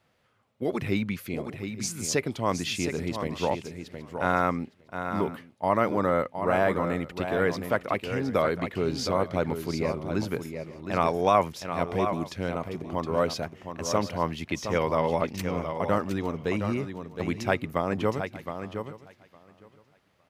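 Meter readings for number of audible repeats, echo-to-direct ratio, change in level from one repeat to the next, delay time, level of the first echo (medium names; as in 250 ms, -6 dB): 4, -7.5 dB, no regular repeats, 716 ms, -8.0 dB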